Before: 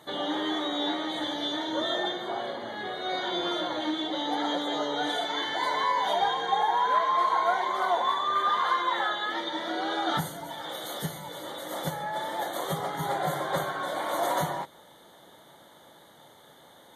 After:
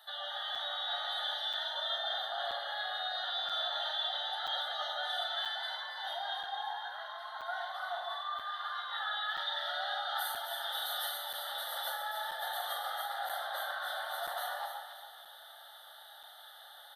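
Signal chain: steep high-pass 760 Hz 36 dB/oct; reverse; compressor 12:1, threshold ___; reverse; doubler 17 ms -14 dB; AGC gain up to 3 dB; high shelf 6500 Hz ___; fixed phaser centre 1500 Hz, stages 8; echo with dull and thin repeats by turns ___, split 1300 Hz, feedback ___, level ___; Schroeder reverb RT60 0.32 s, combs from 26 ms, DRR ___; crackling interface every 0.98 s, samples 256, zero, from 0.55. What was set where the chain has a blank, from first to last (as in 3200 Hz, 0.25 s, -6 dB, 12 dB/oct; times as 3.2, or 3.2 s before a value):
-36 dBFS, +3 dB, 0.139 s, 61%, -3 dB, 7.5 dB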